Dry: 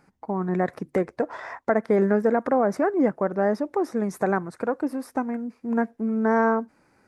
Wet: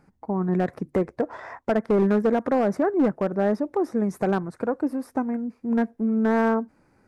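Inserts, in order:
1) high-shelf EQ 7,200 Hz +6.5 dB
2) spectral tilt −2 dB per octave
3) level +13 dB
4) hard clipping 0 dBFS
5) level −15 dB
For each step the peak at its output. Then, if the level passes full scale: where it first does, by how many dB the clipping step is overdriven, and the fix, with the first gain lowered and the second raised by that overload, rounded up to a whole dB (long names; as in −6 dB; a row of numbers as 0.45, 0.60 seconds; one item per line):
−8.0, −7.0, +6.0, 0.0, −15.0 dBFS
step 3, 6.0 dB
step 3 +7 dB, step 5 −9 dB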